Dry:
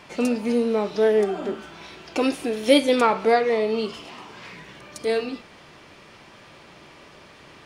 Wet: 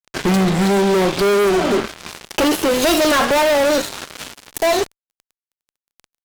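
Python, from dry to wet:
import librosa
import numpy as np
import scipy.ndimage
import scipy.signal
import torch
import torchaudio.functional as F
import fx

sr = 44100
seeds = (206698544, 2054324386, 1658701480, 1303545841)

y = fx.speed_glide(x, sr, from_pct=71, to_pct=174)
y = fx.fuzz(y, sr, gain_db=35.0, gate_db=-37.0)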